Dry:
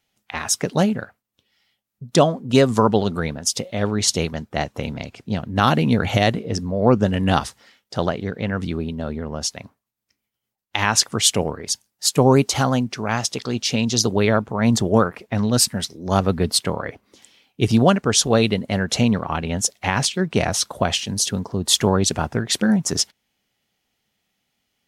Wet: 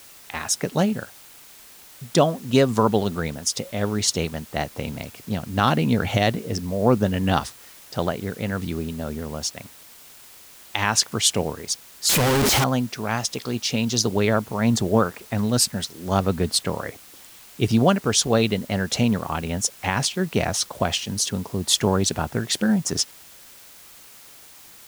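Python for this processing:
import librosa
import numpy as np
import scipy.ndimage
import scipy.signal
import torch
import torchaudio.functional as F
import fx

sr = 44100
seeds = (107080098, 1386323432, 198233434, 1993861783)

p1 = fx.clip_1bit(x, sr, at=(12.09, 12.64))
p2 = fx.quant_dither(p1, sr, seeds[0], bits=6, dither='triangular')
p3 = p1 + (p2 * librosa.db_to_amplitude(-3.5))
y = p3 * librosa.db_to_amplitude(-7.0)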